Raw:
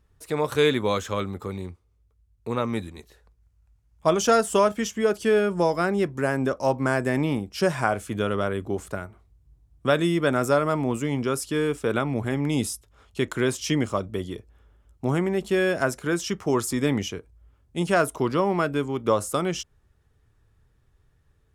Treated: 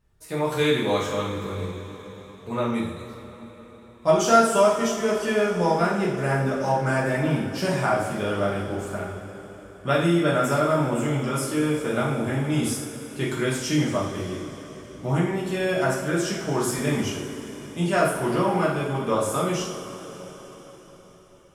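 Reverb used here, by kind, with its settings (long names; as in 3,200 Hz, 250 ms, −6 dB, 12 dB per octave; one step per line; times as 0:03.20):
coupled-rooms reverb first 0.57 s, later 4.9 s, from −16 dB, DRR −7 dB
level −6.5 dB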